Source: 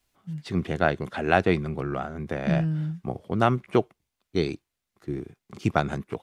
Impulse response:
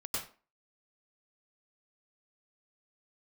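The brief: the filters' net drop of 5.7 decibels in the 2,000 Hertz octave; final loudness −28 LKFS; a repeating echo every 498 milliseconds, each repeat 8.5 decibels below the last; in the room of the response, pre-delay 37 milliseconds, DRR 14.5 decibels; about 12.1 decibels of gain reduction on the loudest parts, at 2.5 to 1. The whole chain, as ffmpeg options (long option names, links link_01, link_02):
-filter_complex "[0:a]equalizer=frequency=2000:width_type=o:gain=-8.5,acompressor=threshold=-35dB:ratio=2.5,aecho=1:1:498|996|1494|1992:0.376|0.143|0.0543|0.0206,asplit=2[link_01][link_02];[1:a]atrim=start_sample=2205,adelay=37[link_03];[link_02][link_03]afir=irnorm=-1:irlink=0,volume=-17dB[link_04];[link_01][link_04]amix=inputs=2:normalize=0,volume=9dB"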